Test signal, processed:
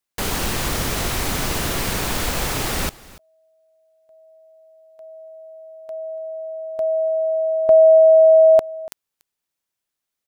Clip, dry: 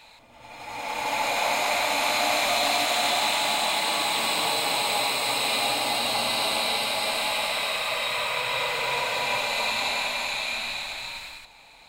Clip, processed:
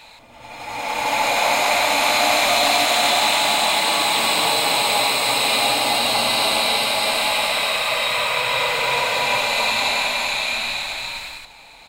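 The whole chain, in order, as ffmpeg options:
-af "aecho=1:1:288:0.0891,volume=2.11"

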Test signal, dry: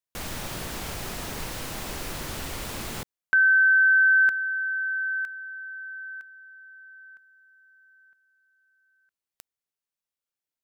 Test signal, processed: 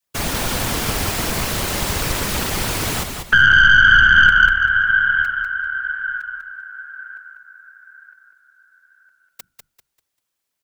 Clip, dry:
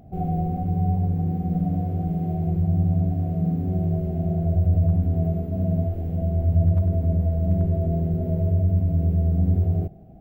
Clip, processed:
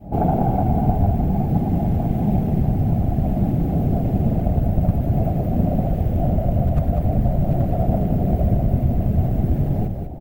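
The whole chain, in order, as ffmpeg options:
-filter_complex "[0:a]bandreject=f=50:t=h:w=6,bandreject=f=100:t=h:w=6,bandreject=f=150:t=h:w=6,bandreject=f=200:t=h:w=6,adynamicequalizer=threshold=0.01:dfrequency=500:dqfactor=0.74:tfrequency=500:tqfactor=0.74:attack=5:release=100:ratio=0.375:range=3.5:mode=cutabove:tftype=bell,acrossover=split=380[s0][s1];[s0]acompressor=threshold=0.0316:ratio=6:release=232[s2];[s2][s1]amix=inputs=2:normalize=0,afftfilt=real='hypot(re,im)*cos(2*PI*random(0))':imag='hypot(re,im)*sin(2*PI*random(1))':win_size=512:overlap=0.75,aeval=exprs='(tanh(7.94*val(0)+0.65)-tanh(0.65))/7.94':c=same,asplit=2[s3][s4];[s4]asplit=4[s5][s6][s7][s8];[s5]adelay=196,afreqshift=-31,volume=0.501[s9];[s6]adelay=392,afreqshift=-62,volume=0.15[s10];[s7]adelay=588,afreqshift=-93,volume=0.0452[s11];[s8]adelay=784,afreqshift=-124,volume=0.0135[s12];[s9][s10][s11][s12]amix=inputs=4:normalize=0[s13];[s3][s13]amix=inputs=2:normalize=0,alimiter=level_in=13.3:limit=0.891:release=50:level=0:latency=1,volume=0.891"

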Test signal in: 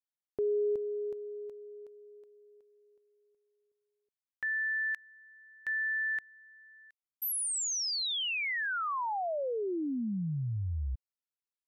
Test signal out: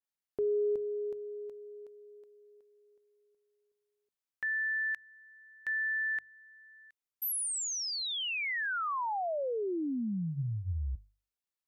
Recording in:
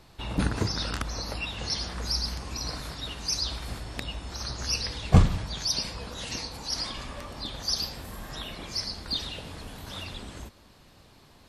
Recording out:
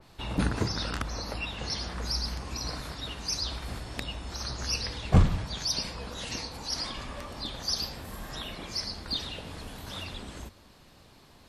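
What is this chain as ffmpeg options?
-af "bandreject=f=50:t=h:w=6,bandreject=f=100:t=h:w=6,bandreject=f=150:t=h:w=6,acontrast=78,adynamicequalizer=threshold=0.0141:dfrequency=3100:dqfactor=0.7:tfrequency=3100:tqfactor=0.7:attack=5:release=100:ratio=0.375:range=2:mode=cutabove:tftype=highshelf,volume=0.447"

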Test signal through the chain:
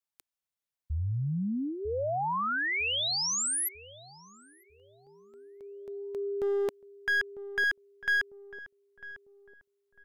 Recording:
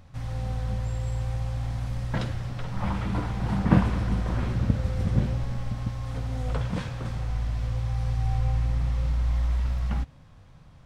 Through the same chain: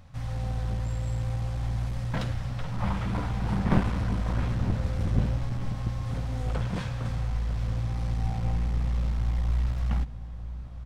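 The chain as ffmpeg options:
-filter_complex "[0:a]equalizer=f=360:w=4:g=-8.5,aeval=exprs='clip(val(0),-1,0.0473)':c=same,asplit=2[s0][s1];[s1]adelay=949,lowpass=f=910:p=1,volume=0.251,asplit=2[s2][s3];[s3]adelay=949,lowpass=f=910:p=1,volume=0.4,asplit=2[s4][s5];[s5]adelay=949,lowpass=f=910:p=1,volume=0.4,asplit=2[s6][s7];[s7]adelay=949,lowpass=f=910:p=1,volume=0.4[s8];[s0][s2][s4][s6][s8]amix=inputs=5:normalize=0"

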